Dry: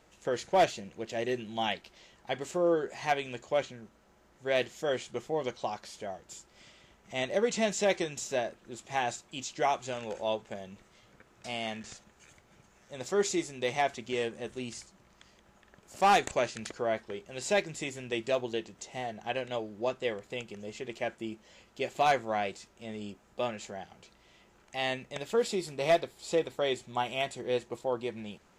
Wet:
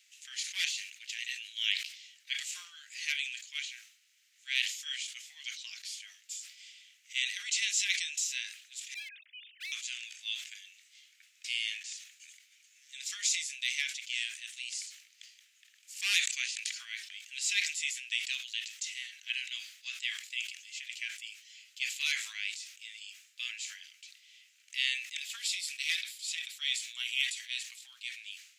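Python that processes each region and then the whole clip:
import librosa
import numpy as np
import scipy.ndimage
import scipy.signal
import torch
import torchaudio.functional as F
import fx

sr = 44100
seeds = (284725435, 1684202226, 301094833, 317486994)

y = fx.chain(x, sr, fx.sine_speech(),
    fx.lowpass(hz=1700.0, slope=6),
    fx.overload_stage(gain_db=32.0), at=(8.94, 9.72))
y = scipy.signal.sosfilt(scipy.signal.butter(6, 2200.0, 'highpass', fs=sr, output='sos'), y)
y = fx.sustainer(y, sr, db_per_s=88.0)
y = y * librosa.db_to_amplitude(6.0)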